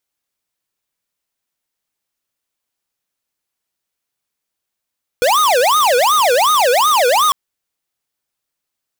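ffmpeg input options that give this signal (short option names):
-f lavfi -i "aevalsrc='0.237*(2*lt(mod((864.5*t-385.5/(2*PI*2.7)*sin(2*PI*2.7*t)),1),0.5)-1)':d=2.1:s=44100"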